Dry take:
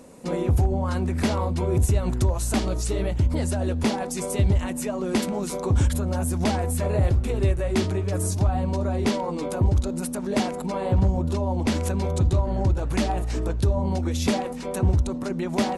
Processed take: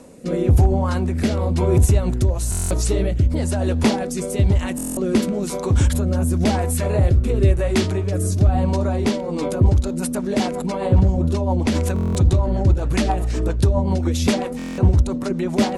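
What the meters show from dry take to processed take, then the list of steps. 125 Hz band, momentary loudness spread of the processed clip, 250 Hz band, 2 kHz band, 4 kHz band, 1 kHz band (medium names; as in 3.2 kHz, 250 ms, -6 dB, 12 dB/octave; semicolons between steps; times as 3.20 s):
+5.0 dB, 6 LU, +5.0 dB, +3.5 dB, +3.5 dB, +2.5 dB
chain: rotary cabinet horn 1 Hz, later 7.5 Hz, at 9.13 s; buffer glitch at 2.50/4.76/11.94/14.57 s, samples 1024, times 8; trim +6.5 dB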